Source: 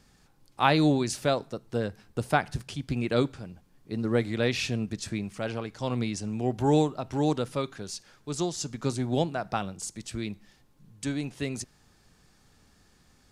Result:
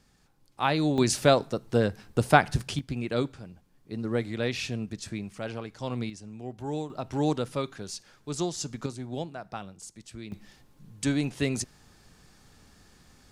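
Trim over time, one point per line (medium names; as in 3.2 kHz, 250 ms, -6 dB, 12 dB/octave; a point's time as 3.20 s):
-3.5 dB
from 0.98 s +5.5 dB
from 2.79 s -3 dB
from 6.10 s -10.5 dB
from 6.90 s -0.5 dB
from 8.86 s -8 dB
from 10.32 s +4.5 dB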